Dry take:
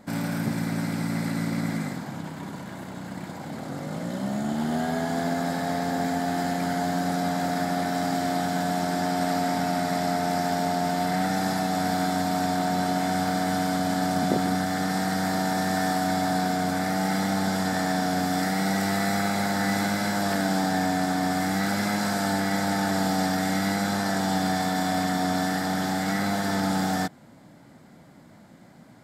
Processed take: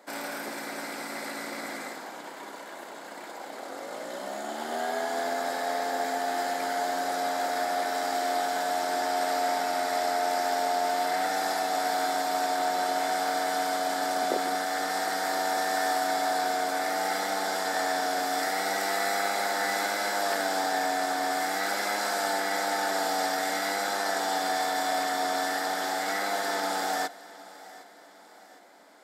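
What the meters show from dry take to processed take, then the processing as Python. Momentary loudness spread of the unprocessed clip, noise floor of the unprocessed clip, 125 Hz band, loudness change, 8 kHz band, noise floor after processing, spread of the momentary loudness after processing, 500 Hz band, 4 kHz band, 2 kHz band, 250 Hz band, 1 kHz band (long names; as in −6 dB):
5 LU, −50 dBFS, below −25 dB, −2.5 dB, 0.0 dB, −47 dBFS, 10 LU, 0.0 dB, 0.0 dB, 0.0 dB, −14.0 dB, 0.0 dB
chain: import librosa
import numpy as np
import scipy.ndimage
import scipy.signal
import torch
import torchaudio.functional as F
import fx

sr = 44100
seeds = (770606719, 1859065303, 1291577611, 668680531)

y = scipy.signal.sosfilt(scipy.signal.butter(4, 380.0, 'highpass', fs=sr, output='sos'), x)
y = fx.echo_feedback(y, sr, ms=760, feedback_pct=47, wet_db=-19)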